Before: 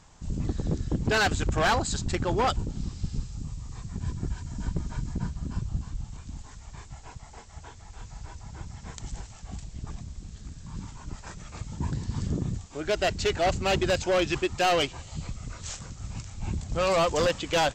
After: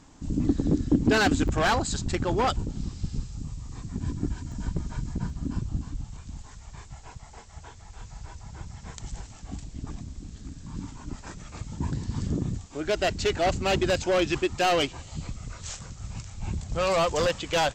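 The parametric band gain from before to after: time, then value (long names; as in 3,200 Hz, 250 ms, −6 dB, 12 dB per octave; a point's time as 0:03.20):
parametric band 280 Hz 0.62 octaves
+14.5 dB
from 0:01.48 +3 dB
from 0:03.72 +11.5 dB
from 0:04.52 +2 dB
from 0:05.30 +10.5 dB
from 0:06.03 −1.5 dB
from 0:09.25 +10 dB
from 0:11.37 +4 dB
from 0:15.43 −3 dB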